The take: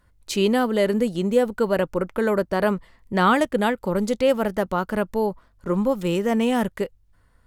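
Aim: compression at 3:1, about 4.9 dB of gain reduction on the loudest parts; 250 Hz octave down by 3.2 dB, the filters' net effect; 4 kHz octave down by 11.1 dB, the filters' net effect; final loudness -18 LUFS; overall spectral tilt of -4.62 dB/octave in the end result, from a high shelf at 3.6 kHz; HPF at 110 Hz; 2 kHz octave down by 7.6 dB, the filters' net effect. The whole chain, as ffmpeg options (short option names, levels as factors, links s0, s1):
-af "highpass=110,equalizer=f=250:t=o:g=-3.5,equalizer=f=2000:t=o:g=-7.5,highshelf=f=3600:g=-8,equalizer=f=4000:t=o:g=-7,acompressor=threshold=0.0794:ratio=3,volume=2.99"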